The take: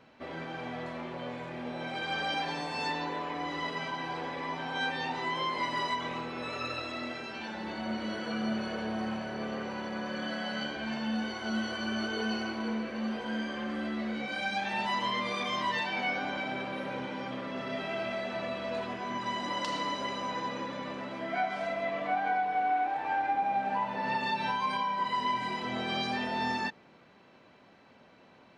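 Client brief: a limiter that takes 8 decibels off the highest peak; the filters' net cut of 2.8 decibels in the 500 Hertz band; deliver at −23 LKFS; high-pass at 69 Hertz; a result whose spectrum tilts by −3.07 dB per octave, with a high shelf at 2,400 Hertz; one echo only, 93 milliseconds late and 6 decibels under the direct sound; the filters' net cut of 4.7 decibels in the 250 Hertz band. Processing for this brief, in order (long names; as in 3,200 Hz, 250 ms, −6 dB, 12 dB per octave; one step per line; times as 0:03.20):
high-pass filter 69 Hz
parametric band 250 Hz −5 dB
parametric band 500 Hz −3 dB
high-shelf EQ 2,400 Hz +4.5 dB
brickwall limiter −26 dBFS
single-tap delay 93 ms −6 dB
level +11 dB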